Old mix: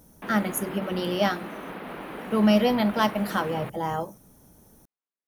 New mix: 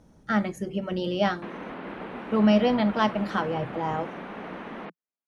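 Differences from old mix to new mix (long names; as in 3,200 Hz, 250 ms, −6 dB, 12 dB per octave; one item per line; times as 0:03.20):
background: entry +1.20 s
master: add high-frequency loss of the air 120 metres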